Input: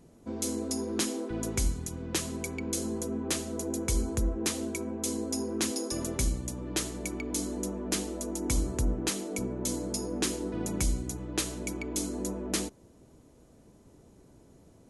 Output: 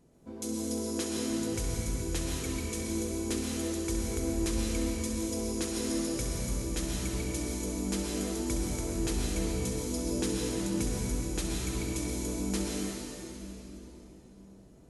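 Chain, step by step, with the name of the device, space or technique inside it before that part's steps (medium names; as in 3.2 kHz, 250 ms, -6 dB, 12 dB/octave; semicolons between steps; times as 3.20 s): tunnel (flutter echo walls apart 11.4 m, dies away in 0.43 s; reverberation RT60 3.7 s, pre-delay 102 ms, DRR -3.5 dB); trim -7 dB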